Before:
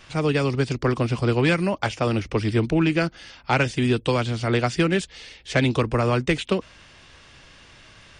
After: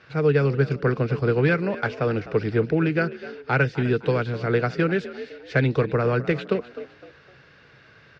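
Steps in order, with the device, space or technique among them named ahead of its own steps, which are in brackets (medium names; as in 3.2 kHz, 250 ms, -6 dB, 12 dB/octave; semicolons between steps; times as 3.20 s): frequency-shifting delay pedal into a guitar cabinet (frequency-shifting echo 255 ms, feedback 38%, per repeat +58 Hz, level -15.5 dB; cabinet simulation 85–4500 Hz, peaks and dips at 140 Hz +9 dB, 450 Hz +10 dB, 990 Hz -3 dB, 1.5 kHz +9 dB, 3.2 kHz -8 dB); trim -4.5 dB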